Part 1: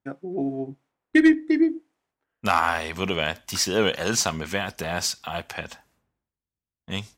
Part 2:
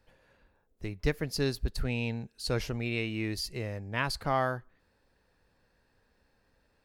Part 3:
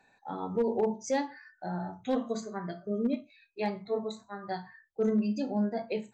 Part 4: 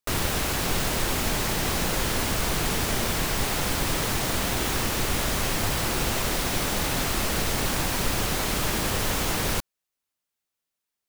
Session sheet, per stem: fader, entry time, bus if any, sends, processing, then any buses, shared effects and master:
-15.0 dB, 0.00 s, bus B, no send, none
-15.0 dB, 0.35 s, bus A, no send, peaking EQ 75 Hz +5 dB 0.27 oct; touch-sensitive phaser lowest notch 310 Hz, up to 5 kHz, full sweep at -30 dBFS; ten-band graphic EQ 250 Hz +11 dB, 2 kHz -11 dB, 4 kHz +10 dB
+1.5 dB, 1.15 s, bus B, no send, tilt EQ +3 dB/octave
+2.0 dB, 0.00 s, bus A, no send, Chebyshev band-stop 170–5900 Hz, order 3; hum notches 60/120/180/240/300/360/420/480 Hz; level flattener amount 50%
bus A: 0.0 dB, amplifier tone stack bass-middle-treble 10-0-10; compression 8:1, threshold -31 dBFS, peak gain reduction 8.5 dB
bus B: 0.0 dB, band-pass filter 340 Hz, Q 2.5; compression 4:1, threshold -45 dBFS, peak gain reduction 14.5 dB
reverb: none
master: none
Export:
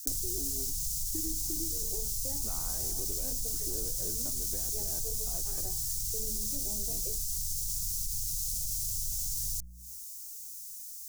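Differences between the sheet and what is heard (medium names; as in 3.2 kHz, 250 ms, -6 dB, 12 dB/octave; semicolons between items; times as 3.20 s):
stem 1 -15.0 dB -> -3.0 dB; stem 2 -15.0 dB -> -23.5 dB; stem 4 +2.0 dB -> +11.0 dB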